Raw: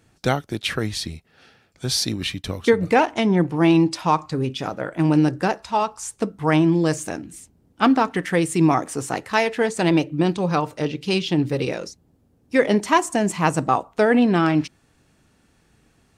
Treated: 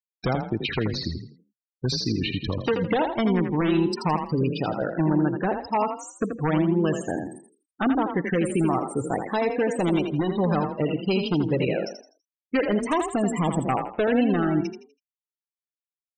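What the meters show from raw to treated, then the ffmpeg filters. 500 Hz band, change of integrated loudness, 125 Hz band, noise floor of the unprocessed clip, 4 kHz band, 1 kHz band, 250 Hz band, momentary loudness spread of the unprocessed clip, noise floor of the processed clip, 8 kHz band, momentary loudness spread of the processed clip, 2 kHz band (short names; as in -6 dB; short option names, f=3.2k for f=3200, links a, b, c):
-3.0 dB, -4.0 dB, -3.0 dB, -61 dBFS, -5.5 dB, -5.5 dB, -3.5 dB, 10 LU, under -85 dBFS, -10.0 dB, 6 LU, -6.5 dB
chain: -filter_complex "[0:a]bandreject=f=3.4k:w=6.9,acrossover=split=780|3800[a][b][c];[a]acompressor=threshold=-23dB:ratio=4[d];[b]acompressor=threshold=-32dB:ratio=4[e];[c]acompressor=threshold=-37dB:ratio=4[f];[d][e][f]amix=inputs=3:normalize=0,aeval=exprs='0.126*(abs(mod(val(0)/0.126+3,4)-2)-1)':c=same,afftfilt=real='re*gte(hypot(re,im),0.0398)':imag='im*gte(hypot(re,im),0.0398)':win_size=1024:overlap=0.75,asplit=5[g][h][i][j][k];[h]adelay=82,afreqshift=31,volume=-7dB[l];[i]adelay=164,afreqshift=62,volume=-17.5dB[m];[j]adelay=246,afreqshift=93,volume=-27.9dB[n];[k]adelay=328,afreqshift=124,volume=-38.4dB[o];[g][l][m][n][o]amix=inputs=5:normalize=0,volume=2.5dB"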